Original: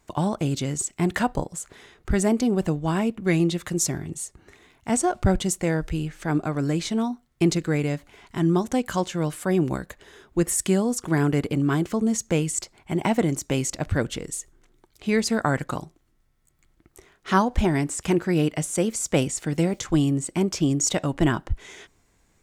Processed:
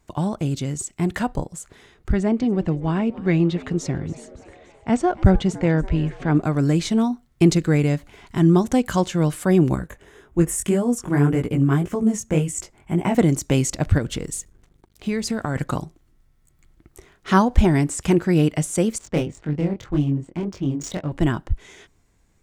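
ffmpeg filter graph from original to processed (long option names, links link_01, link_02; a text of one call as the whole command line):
ffmpeg -i in.wav -filter_complex "[0:a]asettb=1/sr,asplit=3[link_01][link_02][link_03];[link_01]atrim=end=2.124[link_04];[link_02]atrim=start=2.12:end=6.42,asetpts=PTS-STARTPTS,afade=type=in:duration=0.004:curve=qsin,afade=type=out:start_time=4.296:duration=0.004:curve=qsin,lowpass=3600,asplit=6[link_05][link_06][link_07][link_08][link_09][link_10];[link_06]adelay=285,afreqshift=96,volume=-20dB[link_11];[link_07]adelay=570,afreqshift=192,volume=-24.9dB[link_12];[link_08]adelay=855,afreqshift=288,volume=-29.8dB[link_13];[link_09]adelay=1140,afreqshift=384,volume=-34.6dB[link_14];[link_10]adelay=1425,afreqshift=480,volume=-39.5dB[link_15];[link_05][link_11][link_12][link_13][link_14][link_15]amix=inputs=6:normalize=0,atrim=end_sample=189630[link_16];[link_03]atrim=start=6.416[link_17];[link_04][link_16]acrossfade=duration=0.004:curve1=hsin:curve2=qsin[link_18];[link_18][link_17]acrossfade=duration=0.004:curve1=qsin:curve2=hsin,asettb=1/sr,asplit=3[link_19][link_20][link_21];[link_19]atrim=end=9.754[link_22];[link_20]atrim=start=9.75:end=13.15,asetpts=PTS-STARTPTS,afade=type=in:duration=0.004:curve=qsin,afade=type=out:start_time=3.396:duration=0.004:curve=qsin,equalizer=frequency=4300:width=2.1:gain=-10.5,flanger=delay=16:depth=6.2:speed=1.8[link_23];[link_21]atrim=start=13.146[link_24];[link_22][link_23]acrossfade=duration=0.004:curve1=hsin:curve2=qsin[link_25];[link_25][link_24]acrossfade=duration=0.004:curve1=qsin:curve2=hsin,asettb=1/sr,asplit=3[link_26][link_27][link_28];[link_26]atrim=end=13.984[link_29];[link_27]atrim=start=13.98:end=15.56,asetpts=PTS-STARTPTS,afade=type=in:duration=0.004:curve=qsin,afade=type=out:start_time=1.576:duration=0.004:curve=qsin,acompressor=threshold=-25dB:ratio=4:attack=3.2:release=140:knee=1:detection=peak,aeval=exprs='val(0)+0.00112*(sin(2*PI*50*n/s)+sin(2*PI*2*50*n/s)/2+sin(2*PI*3*50*n/s)/3+sin(2*PI*4*50*n/s)/4+sin(2*PI*5*50*n/s)/5)':channel_layout=same,aeval=exprs='sgn(val(0))*max(abs(val(0))-0.00106,0)':channel_layout=same[link_30];[link_28]atrim=start=15.556[link_31];[link_29][link_30]acrossfade=duration=0.004:curve1=hsin:curve2=qsin[link_32];[link_32][link_31]acrossfade=duration=0.004:curve1=qsin:curve2=hsin,asettb=1/sr,asplit=3[link_33][link_34][link_35];[link_33]atrim=end=18.984[link_36];[link_34]atrim=start=18.98:end=21.12,asetpts=PTS-STARTPTS,afade=type=in:duration=0.004:curve=qsin,afade=type=out:start_time=2.136:duration=0.004:curve=qsin,adynamicsmooth=sensitivity=2.5:basefreq=1400,flanger=delay=20:depth=5.7:speed=1.9[link_37];[link_35]atrim=start=21.116[link_38];[link_36][link_37]acrossfade=duration=0.004:curve1=hsin:curve2=qsin[link_39];[link_39][link_38]acrossfade=duration=0.004:curve1=qsin:curve2=hsin,dynaudnorm=framelen=600:gausssize=13:maxgain=7dB,lowshelf=frequency=230:gain=6.5,volume=-2.5dB" out.wav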